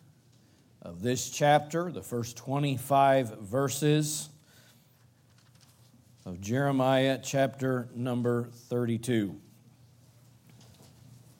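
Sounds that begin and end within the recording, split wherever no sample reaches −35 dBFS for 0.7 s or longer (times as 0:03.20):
0:00.86–0:04.25
0:06.27–0:09.33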